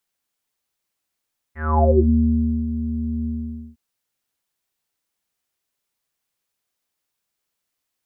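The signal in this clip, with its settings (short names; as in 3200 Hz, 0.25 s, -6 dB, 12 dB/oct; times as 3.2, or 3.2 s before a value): synth note square D#2 24 dB/oct, low-pass 260 Hz, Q 12, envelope 3 oct, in 0.53 s, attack 0.253 s, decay 0.86 s, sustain -11.5 dB, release 0.50 s, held 1.71 s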